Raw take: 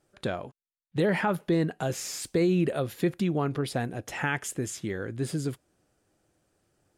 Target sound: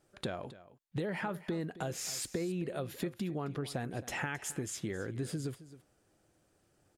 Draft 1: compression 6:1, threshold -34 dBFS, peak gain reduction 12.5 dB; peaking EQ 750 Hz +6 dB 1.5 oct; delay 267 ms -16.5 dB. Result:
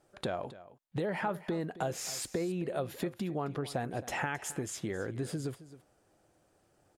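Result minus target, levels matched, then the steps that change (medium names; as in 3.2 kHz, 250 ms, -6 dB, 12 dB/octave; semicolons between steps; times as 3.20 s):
1 kHz band +3.5 dB
remove: peaking EQ 750 Hz +6 dB 1.5 oct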